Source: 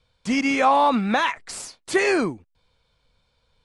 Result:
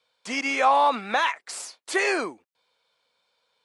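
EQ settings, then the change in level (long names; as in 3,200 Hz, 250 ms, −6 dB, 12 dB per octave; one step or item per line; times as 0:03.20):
high-pass filter 470 Hz 12 dB per octave
−1.0 dB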